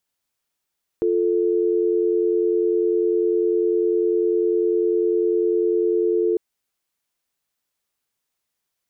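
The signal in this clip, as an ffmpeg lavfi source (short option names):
-f lavfi -i "aevalsrc='0.106*(sin(2*PI*350*t)+sin(2*PI*440*t))':d=5.35:s=44100"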